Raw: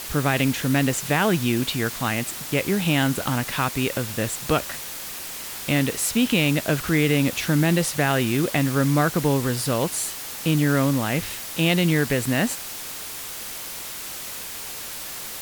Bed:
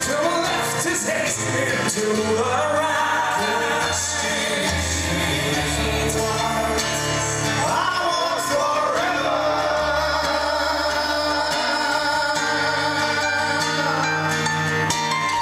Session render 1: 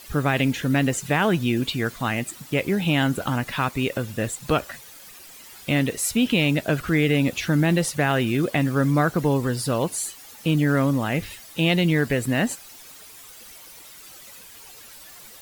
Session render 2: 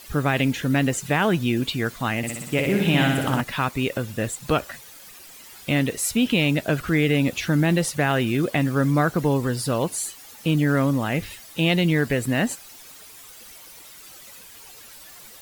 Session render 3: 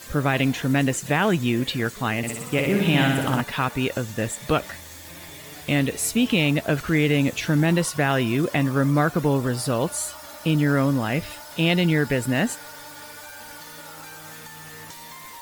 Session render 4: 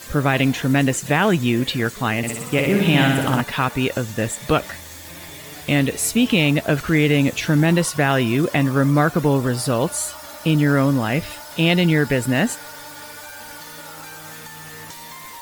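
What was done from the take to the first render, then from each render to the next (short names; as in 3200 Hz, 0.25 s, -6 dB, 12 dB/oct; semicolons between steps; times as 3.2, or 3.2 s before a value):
denoiser 13 dB, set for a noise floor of -34 dBFS
2.17–3.41 flutter echo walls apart 10.4 m, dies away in 1 s
add bed -21.5 dB
gain +3.5 dB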